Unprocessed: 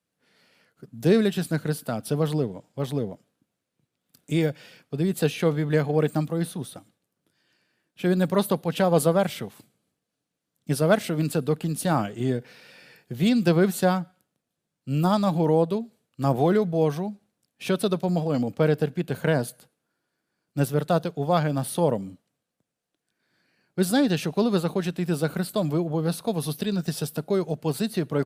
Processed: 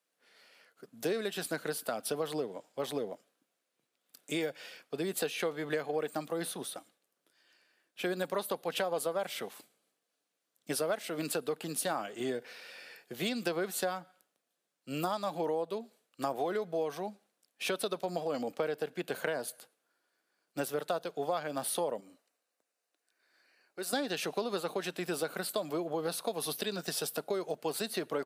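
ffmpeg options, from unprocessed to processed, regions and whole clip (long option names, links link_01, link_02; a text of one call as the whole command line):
ffmpeg -i in.wav -filter_complex "[0:a]asettb=1/sr,asplit=3[link_01][link_02][link_03];[link_01]atrim=end=22.004[link_04];[link_02]atrim=start=22:end=23.93,asetpts=PTS-STARTPTS,afade=type=in:duration=0.004:curve=qsin,afade=type=out:start_time=1.926:duration=0.004:curve=qsin,bandreject=frequency=3300:width=7.9,acompressor=threshold=-43dB:ratio=1.5:attack=3.2:release=140:knee=1:detection=peak,equalizer=frequency=150:width=1.3:gain=-10[link_05];[link_03]atrim=start=23.926[link_06];[link_04][link_05]acrossfade=duration=0.004:curve1=hsin:curve2=qsin[link_07];[link_07][link_06]acrossfade=duration=0.004:curve1=qsin:curve2=hsin,highpass=450,bandreject=frequency=900:width=23,acompressor=threshold=-31dB:ratio=6,volume=1dB" out.wav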